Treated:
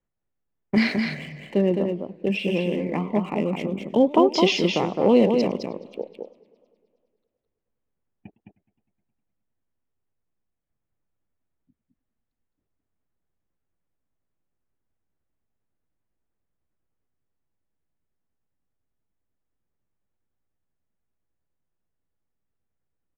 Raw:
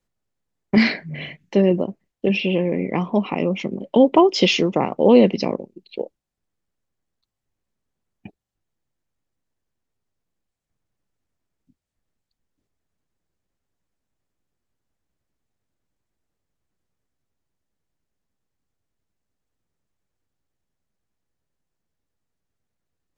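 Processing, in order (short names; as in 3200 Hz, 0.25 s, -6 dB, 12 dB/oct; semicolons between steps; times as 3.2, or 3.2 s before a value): Wiener smoothing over 9 samples; echo 0.212 s -5 dB; warbling echo 0.104 s, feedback 72%, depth 205 cents, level -23 dB; gain -4.5 dB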